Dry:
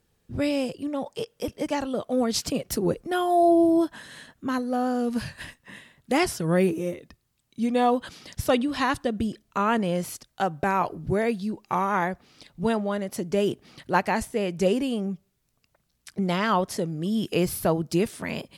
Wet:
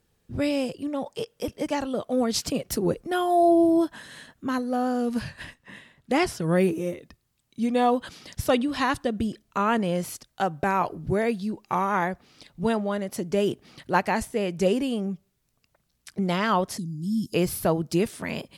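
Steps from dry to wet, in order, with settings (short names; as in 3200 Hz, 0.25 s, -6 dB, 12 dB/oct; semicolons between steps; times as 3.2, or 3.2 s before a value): 5.19–6.42 high shelf 7300 Hz -8 dB; 16.78–17.34 elliptic band-stop 250–4600 Hz, stop band 40 dB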